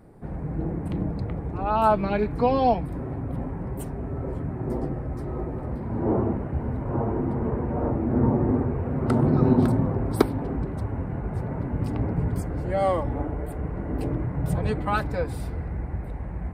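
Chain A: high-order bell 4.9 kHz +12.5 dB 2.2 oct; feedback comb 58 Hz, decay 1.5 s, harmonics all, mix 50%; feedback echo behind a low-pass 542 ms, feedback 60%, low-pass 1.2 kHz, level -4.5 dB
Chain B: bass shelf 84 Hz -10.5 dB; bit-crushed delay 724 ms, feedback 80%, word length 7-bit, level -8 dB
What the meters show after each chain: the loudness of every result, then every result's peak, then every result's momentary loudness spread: -30.0 LUFS, -27.0 LUFS; -8.0 dBFS, -3.0 dBFS; 8 LU, 10 LU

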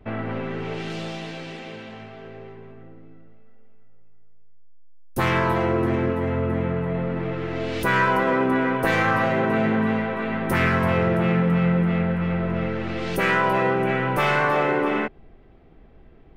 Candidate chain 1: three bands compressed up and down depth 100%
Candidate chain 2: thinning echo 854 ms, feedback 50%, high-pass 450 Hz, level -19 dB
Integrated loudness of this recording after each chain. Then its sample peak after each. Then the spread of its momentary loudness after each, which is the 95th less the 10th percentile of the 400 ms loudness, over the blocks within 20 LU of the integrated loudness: -22.5 LUFS, -22.5 LUFS; -8.0 dBFS, -6.0 dBFS; 9 LU, 18 LU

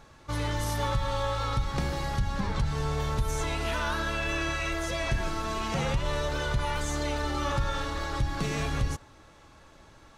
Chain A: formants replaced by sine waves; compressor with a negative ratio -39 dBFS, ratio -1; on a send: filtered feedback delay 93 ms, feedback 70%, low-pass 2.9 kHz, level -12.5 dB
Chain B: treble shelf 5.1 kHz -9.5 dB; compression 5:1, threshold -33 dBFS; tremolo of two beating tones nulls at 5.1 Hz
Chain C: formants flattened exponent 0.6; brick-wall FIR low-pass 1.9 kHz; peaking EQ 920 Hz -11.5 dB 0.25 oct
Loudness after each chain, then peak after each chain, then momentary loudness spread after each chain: -37.0 LUFS, -40.5 LUFS, -32.0 LUFS; -21.5 dBFS, -23.5 dBFS, -15.0 dBFS; 7 LU, 5 LU, 3 LU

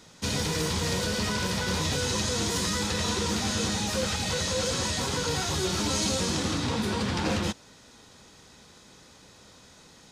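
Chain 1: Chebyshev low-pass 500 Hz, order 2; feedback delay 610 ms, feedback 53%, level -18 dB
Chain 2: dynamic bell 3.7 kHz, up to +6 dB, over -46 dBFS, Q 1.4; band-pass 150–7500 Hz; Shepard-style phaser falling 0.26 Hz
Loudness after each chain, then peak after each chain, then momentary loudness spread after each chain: -32.5 LUFS, -26.5 LUFS; -20.0 dBFS, -14.5 dBFS; 15 LU, 3 LU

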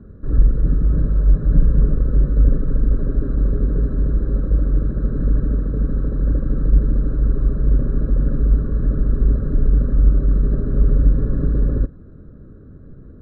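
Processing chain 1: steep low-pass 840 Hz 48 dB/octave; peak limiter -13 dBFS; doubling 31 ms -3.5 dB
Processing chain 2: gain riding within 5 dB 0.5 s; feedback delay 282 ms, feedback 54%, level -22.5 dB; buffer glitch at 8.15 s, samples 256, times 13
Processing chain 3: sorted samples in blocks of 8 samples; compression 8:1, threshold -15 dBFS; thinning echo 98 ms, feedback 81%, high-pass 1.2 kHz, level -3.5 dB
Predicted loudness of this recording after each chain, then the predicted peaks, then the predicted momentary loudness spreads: -24.5 LUFS, -20.0 LUFS, -23.5 LUFS; -8.5 dBFS, -2.5 dBFS, -9.5 dBFS; 3 LU, 2 LU, 3 LU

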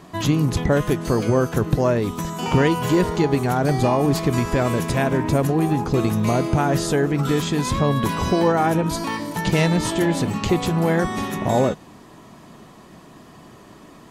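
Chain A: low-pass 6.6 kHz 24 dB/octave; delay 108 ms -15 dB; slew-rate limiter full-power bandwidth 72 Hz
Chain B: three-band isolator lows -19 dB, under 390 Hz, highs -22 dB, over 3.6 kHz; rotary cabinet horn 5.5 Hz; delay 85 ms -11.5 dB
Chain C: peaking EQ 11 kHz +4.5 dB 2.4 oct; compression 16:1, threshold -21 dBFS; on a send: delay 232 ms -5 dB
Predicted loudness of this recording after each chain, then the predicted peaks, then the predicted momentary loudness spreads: -21.0 LUFS, -28.0 LUFS, -25.0 LUFS; -6.0 dBFS, -11.5 dBFS, -8.5 dBFS; 4 LU, 6 LU, 19 LU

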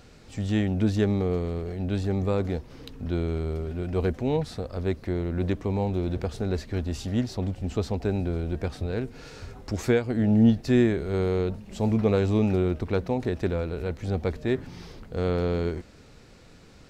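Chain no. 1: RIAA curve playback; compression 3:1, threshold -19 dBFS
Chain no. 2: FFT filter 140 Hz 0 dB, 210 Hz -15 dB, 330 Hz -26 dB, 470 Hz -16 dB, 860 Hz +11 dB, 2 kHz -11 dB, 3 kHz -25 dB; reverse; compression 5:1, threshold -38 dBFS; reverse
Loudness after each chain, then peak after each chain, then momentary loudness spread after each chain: -23.5 LUFS, -42.0 LUFS; -9.0 dBFS, -28.0 dBFS; 8 LU, 6 LU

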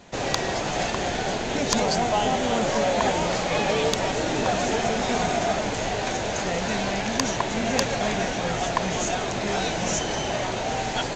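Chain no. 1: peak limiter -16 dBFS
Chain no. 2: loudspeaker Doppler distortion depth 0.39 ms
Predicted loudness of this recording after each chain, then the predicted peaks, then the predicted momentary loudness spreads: -26.0 LUFS, -25.0 LUFS; -16.0 dBFS, -9.0 dBFS; 2 LU, 4 LU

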